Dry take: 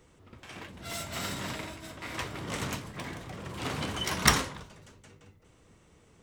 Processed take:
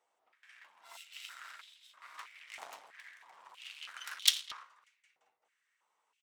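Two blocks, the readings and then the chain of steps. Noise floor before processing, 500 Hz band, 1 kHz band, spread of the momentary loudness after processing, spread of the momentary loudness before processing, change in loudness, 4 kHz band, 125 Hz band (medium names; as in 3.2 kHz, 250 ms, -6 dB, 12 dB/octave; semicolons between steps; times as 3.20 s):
-61 dBFS, -24.5 dB, -16.0 dB, 24 LU, 20 LU, -3.5 dB, -1.5 dB, under -40 dB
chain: speakerphone echo 220 ms, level -9 dB; Chebyshev shaper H 2 -9 dB, 3 -11 dB, 5 -42 dB, 6 -19 dB, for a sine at -3.5 dBFS; step-sequenced high-pass 3.1 Hz 750–3400 Hz; trim -4 dB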